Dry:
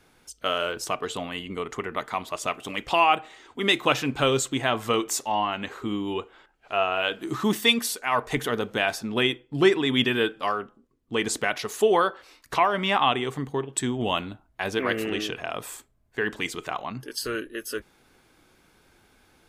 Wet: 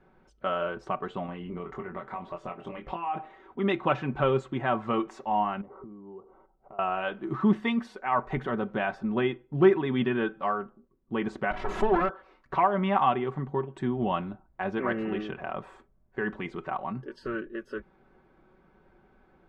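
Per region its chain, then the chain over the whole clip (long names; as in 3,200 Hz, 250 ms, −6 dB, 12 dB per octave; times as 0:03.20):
0:01.26–0:03.15: downward compressor 2.5 to 1, threshold −35 dBFS + double-tracking delay 23 ms −4.5 dB
0:05.61–0:06.79: Savitzky-Golay smoothing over 65 samples + downward compressor 10 to 1, threshold −43 dBFS
0:11.51–0:12.09: lower of the sound and its delayed copy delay 3 ms + background raised ahead of every attack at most 48 dB per second
whole clip: low-pass filter 1,200 Hz 12 dB per octave; comb filter 5.3 ms, depth 55%; dynamic equaliser 450 Hz, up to −5 dB, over −38 dBFS, Q 1.6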